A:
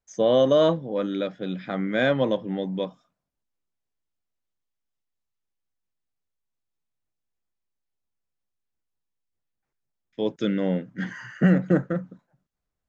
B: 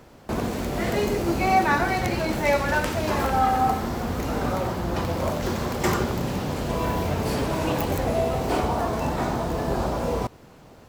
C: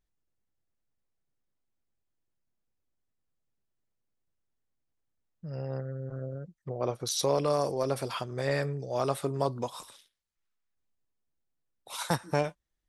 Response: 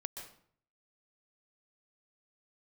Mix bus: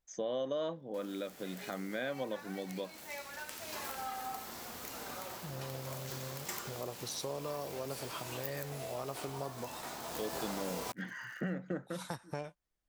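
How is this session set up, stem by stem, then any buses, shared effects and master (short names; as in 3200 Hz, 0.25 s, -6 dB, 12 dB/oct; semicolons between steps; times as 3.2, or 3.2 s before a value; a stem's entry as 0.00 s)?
-4.0 dB, 0.00 s, no send, low shelf 200 Hz -9.5 dB
3.45 s -21.5 dB -> 3.78 s -14.5 dB -> 10 s -14.5 dB -> 10.28 s -3 dB, 0.65 s, no send, crossover distortion -43.5 dBFS; tilt +4 dB/oct
-5.5 dB, 0.00 s, no send, dry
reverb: off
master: compressor 2.5:1, threshold -39 dBFS, peak gain reduction 12.5 dB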